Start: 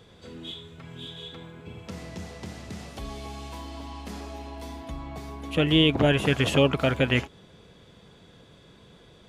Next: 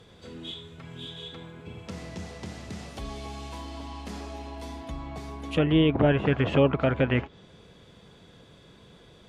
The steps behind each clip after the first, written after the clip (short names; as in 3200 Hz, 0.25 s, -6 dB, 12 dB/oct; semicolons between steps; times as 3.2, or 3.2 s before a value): treble ducked by the level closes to 1800 Hz, closed at -19.5 dBFS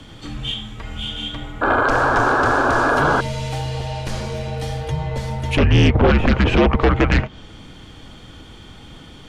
painted sound noise, 1.61–3.21, 440–1900 Hz -29 dBFS; frequency shift -200 Hz; sine folder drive 9 dB, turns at -8.5 dBFS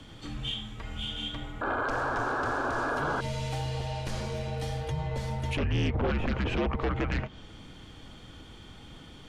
limiter -15.5 dBFS, peak gain reduction 7 dB; gain -7.5 dB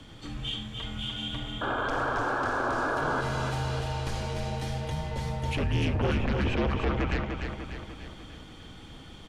feedback echo 0.297 s, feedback 54%, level -5.5 dB